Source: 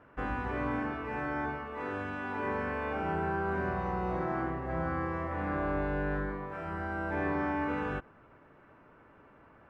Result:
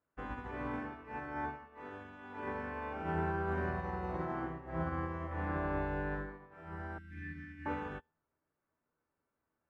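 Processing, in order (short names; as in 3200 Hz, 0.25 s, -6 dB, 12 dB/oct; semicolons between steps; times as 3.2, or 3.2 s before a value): resonator 80 Hz, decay 0.48 s, harmonics all, mix 70%; 6.98–7.66 Chebyshev band-stop 260–1800 Hz, order 3; upward expander 2.5:1, over -56 dBFS; gain +6 dB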